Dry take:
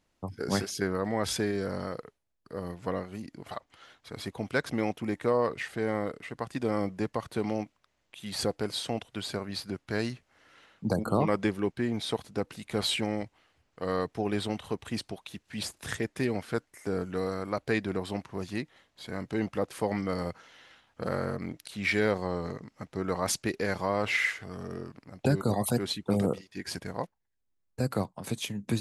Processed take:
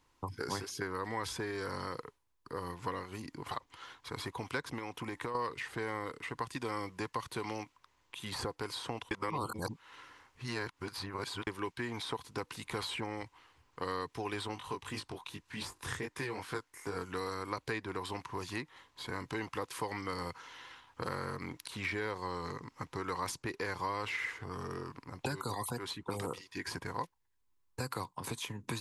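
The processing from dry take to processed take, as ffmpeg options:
ffmpeg -i in.wav -filter_complex "[0:a]asettb=1/sr,asplit=3[link_01][link_02][link_03];[link_01]atrim=end=4.784[link_04];[link_02]atrim=start=4.78:end=5.35,asetpts=PTS-STARTPTS,afade=type=in:duration=0.004:curve=qsin,afade=type=out:start_time=0.566:duration=0.004:curve=qsin,acompressor=threshold=-31dB:ratio=6:attack=3.2:release=140:knee=1:detection=peak[link_05];[link_03]atrim=start=5.346[link_06];[link_04][link_05]acrossfade=duration=0.004:curve1=hsin:curve2=qsin[link_07];[link_07][link_06]acrossfade=duration=0.004:curve1=qsin:curve2=hsin,asplit=3[link_08][link_09][link_10];[link_08]afade=type=out:start_time=14.55:duration=0.02[link_11];[link_09]flanger=delay=19.5:depth=4.1:speed=2.6,afade=type=in:start_time=14.55:duration=0.02,afade=type=out:start_time=16.95:duration=0.02[link_12];[link_10]afade=type=in:start_time=16.95:duration=0.02[link_13];[link_11][link_12][link_13]amix=inputs=3:normalize=0,asplit=3[link_14][link_15][link_16];[link_14]atrim=end=9.112[link_17];[link_15]atrim=start=9.108:end=11.472,asetpts=PTS-STARTPTS,areverse[link_18];[link_16]atrim=start=11.468[link_19];[link_17][link_18]acrossfade=duration=0.004:curve1=hsin:curve2=hsin[link_20];[link_20][link_19]acrossfade=duration=0.004:curve1=hsin:curve2=hsin,equalizer=frequency=200:width_type=o:width=0.33:gain=-11,equalizer=frequency=630:width_type=o:width=0.33:gain=-11,equalizer=frequency=1000:width_type=o:width=0.33:gain=11,acrossover=split=690|1800[link_21][link_22][link_23];[link_21]acompressor=threshold=-43dB:ratio=4[link_24];[link_22]acompressor=threshold=-46dB:ratio=4[link_25];[link_23]acompressor=threshold=-46dB:ratio=4[link_26];[link_24][link_25][link_26]amix=inputs=3:normalize=0,volume=3dB" out.wav

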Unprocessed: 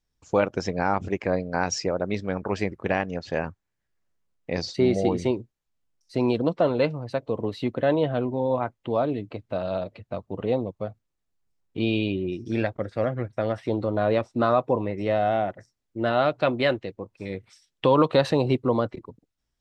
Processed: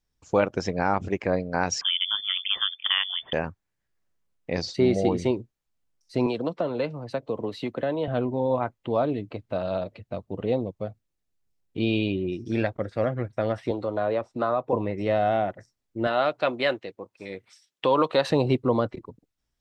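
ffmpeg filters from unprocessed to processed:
ffmpeg -i in.wav -filter_complex "[0:a]asettb=1/sr,asplit=3[link_01][link_02][link_03];[link_01]atrim=end=1.814[link_04];[link_02]atrim=start=1.81:end=3.33,asetpts=PTS-STARTPTS,afade=type=in:duration=0.004:curve=qsin,afade=type=out:start_time=1.516:duration=0.004:curve=qsin,lowpass=frequency=3100:width_type=q:width=0.5098,lowpass=frequency=3100:width_type=q:width=0.6013,lowpass=frequency=3100:width_type=q:width=0.9,lowpass=frequency=3100:width_type=q:width=2.563,afreqshift=-3600[link_05];[link_03]atrim=start=3.326[link_06];[link_04][link_05]acrossfade=duration=0.004:curve1=hsin:curve2=qsin[link_07];[link_07][link_06]acrossfade=duration=0.004:curve1=qsin:curve2=hsin,asettb=1/sr,asplit=3[link_08][link_09][link_10];[link_08]atrim=end=6.264[link_11];[link_09]atrim=start=6.26:end=8.08,asetpts=PTS-STARTPTS,afade=type=in:duration=0.004:curve=qsin,afade=type=out:start_time=1.816:duration=0.004:curve=qsin,acrossover=split=130|450[link_12][link_13][link_14];[link_12]acompressor=threshold=-51dB:ratio=4[link_15];[link_13]acompressor=threshold=-30dB:ratio=4[link_16];[link_14]acompressor=threshold=-28dB:ratio=4[link_17];[link_15][link_16][link_17]amix=inputs=3:normalize=0[link_18];[link_10]atrim=start=8.076[link_19];[link_11][link_18]acrossfade=duration=0.004:curve1=hsin:curve2=qsin[link_20];[link_20][link_19]acrossfade=duration=0.004:curve1=qsin:curve2=hsin,asettb=1/sr,asplit=3[link_21][link_22][link_23];[link_21]atrim=end=9.964[link_24];[link_22]atrim=start=9.96:end=11.9,asetpts=PTS-STARTPTS,afade=type=in:duration=0.004:curve=qsin,afade=type=out:start_time=1.936:duration=0.004:curve=qsin,equalizer=frequency=1100:width=1.3:gain=-4.5[link_25];[link_23]atrim=start=11.896[link_26];[link_24][link_25]acrossfade=duration=0.004:curve1=hsin:curve2=qsin[link_27];[link_27][link_26]acrossfade=duration=0.004:curve1=qsin:curve2=hsin,asettb=1/sr,asplit=3[link_28][link_29][link_30];[link_28]atrim=end=13.714[link_31];[link_29]atrim=start=13.71:end=14.73,asetpts=PTS-STARTPTS,afade=type=in:duration=0.004:curve=qsin,afade=type=out:start_time=1.016:duration=0.004:curve=qsin,acrossover=split=370|1600[link_32][link_33][link_34];[link_32]acompressor=threshold=-36dB:ratio=4[link_35];[link_33]acompressor=threshold=-22dB:ratio=4[link_36];[link_34]acompressor=threshold=-46dB:ratio=4[link_37];[link_35][link_36][link_37]amix=inputs=3:normalize=0[link_38];[link_30]atrim=start=14.726[link_39];[link_31][link_38]acrossfade=duration=0.004:curve1=hsin:curve2=qsin[link_40];[link_40][link_39]acrossfade=duration=0.004:curve1=qsin:curve2=hsin,asettb=1/sr,asplit=3[link_41][link_42][link_43];[link_41]atrim=end=16.074[link_44];[link_42]atrim=start=16.07:end=18.3,asetpts=PTS-STARTPTS,afade=type=in:duration=0.004:curve=qsin,afade=type=out:start_time=2.226:duration=0.004:curve=qsin,highpass=frequency=430:poles=1[link_45];[link_43]atrim=start=18.296[link_46];[link_44][link_45]acrossfade=duration=0.004:curve1=hsin:curve2=qsin[link_47];[link_47][link_46]acrossfade=duration=0.004:curve1=qsin:curve2=hsin" out.wav

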